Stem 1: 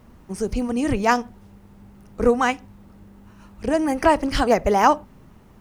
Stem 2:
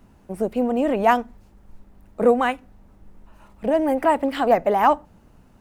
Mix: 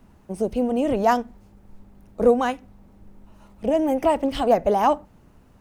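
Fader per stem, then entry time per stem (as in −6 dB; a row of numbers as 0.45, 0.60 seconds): −10.0, −2.0 decibels; 0.00, 0.00 seconds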